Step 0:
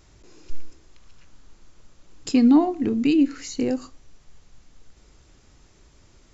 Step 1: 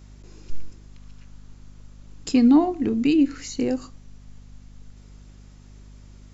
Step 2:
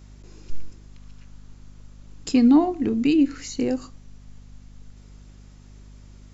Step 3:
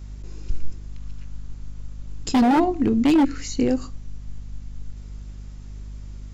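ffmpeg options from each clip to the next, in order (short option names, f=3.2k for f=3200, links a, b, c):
-af "aeval=exprs='val(0)+0.00562*(sin(2*PI*50*n/s)+sin(2*PI*2*50*n/s)/2+sin(2*PI*3*50*n/s)/3+sin(2*PI*4*50*n/s)/4+sin(2*PI*5*50*n/s)/5)':c=same"
-af anull
-af "lowshelf=f=97:g=11,aeval=exprs='0.211*(abs(mod(val(0)/0.211+3,4)-2)-1)':c=same,volume=2dB"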